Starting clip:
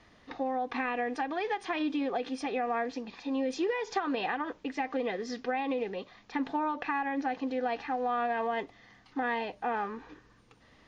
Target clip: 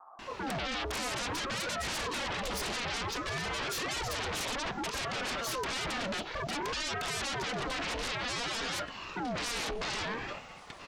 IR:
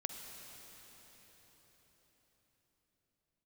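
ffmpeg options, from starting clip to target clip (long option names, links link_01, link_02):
-filter_complex "[0:a]highpass=53,lowshelf=frequency=220:gain=-4.5,bandreject=frequency=450:width=12,acrossover=split=310[link_01][link_02];[link_02]adelay=190[link_03];[link_01][link_03]amix=inputs=2:normalize=0,asplit=2[link_04][link_05];[1:a]atrim=start_sample=2205,afade=type=out:start_time=0.21:duration=0.01,atrim=end_sample=9702[link_06];[link_05][link_06]afir=irnorm=-1:irlink=0,volume=-13dB[link_07];[link_04][link_07]amix=inputs=2:normalize=0,alimiter=level_in=5dB:limit=-24dB:level=0:latency=1:release=163,volume=-5dB,aeval=exprs='0.0355*sin(PI/2*4.47*val(0)/0.0355)':channel_layout=same,aeval=exprs='val(0)*sin(2*PI*590*n/s+590*0.7/0.57*sin(2*PI*0.57*n/s))':channel_layout=same"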